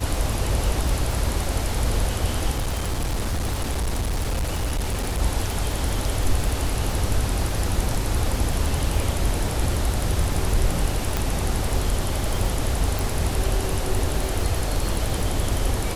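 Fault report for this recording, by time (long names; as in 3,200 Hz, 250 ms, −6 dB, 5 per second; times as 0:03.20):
surface crackle 49 per second −26 dBFS
0:02.54–0:05.22: clipping −20.5 dBFS
0:11.17: click
0:12.99: click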